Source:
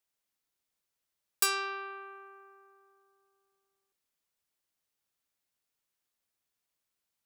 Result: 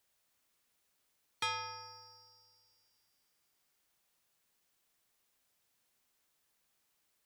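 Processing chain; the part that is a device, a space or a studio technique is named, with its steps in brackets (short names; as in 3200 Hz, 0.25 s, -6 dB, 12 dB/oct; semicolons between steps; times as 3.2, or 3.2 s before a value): split-band scrambled radio (four-band scrambler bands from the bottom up 2341; BPF 320–2800 Hz; white noise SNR 27 dB)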